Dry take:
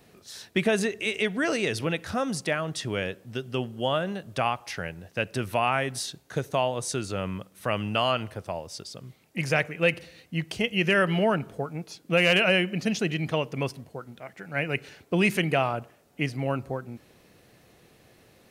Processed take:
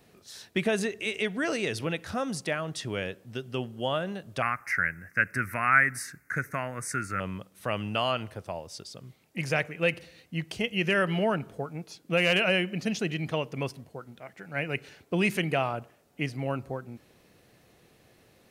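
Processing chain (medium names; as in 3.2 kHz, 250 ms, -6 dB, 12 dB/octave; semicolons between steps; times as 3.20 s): 4.42–7.20 s: FFT filter 270 Hz 0 dB, 400 Hz -7 dB, 890 Hz -8 dB, 1.4 kHz +14 dB, 2.1 kHz +15 dB, 3.3 kHz -24 dB, 5 kHz -5 dB, 13 kHz +5 dB; trim -3 dB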